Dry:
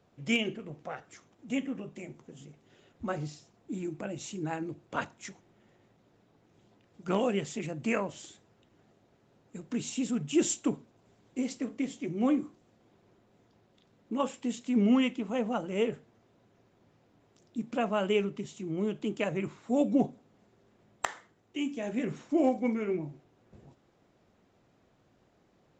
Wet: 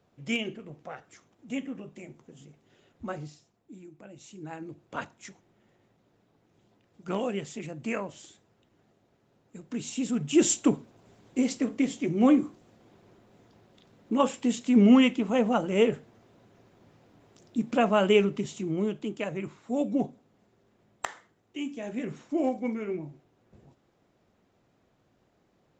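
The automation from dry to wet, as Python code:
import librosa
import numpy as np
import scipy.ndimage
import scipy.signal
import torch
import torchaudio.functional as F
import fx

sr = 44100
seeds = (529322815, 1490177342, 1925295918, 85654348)

y = fx.gain(x, sr, db=fx.line((3.09, -1.5), (3.9, -13.0), (4.82, -2.0), (9.63, -2.0), (10.59, 6.5), (18.57, 6.5), (19.13, -1.5)))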